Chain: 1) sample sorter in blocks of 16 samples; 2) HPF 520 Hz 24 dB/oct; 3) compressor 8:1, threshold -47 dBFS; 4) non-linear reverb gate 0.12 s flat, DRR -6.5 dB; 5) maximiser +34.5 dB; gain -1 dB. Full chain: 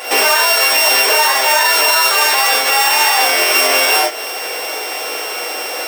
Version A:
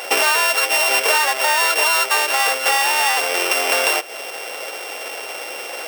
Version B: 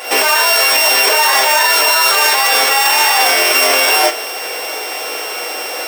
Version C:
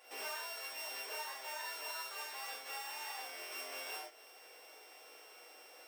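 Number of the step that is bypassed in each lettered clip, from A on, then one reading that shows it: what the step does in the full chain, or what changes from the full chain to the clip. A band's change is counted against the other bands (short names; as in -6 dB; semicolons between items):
4, momentary loudness spread change +3 LU; 3, mean gain reduction 9.5 dB; 5, crest factor change +3.5 dB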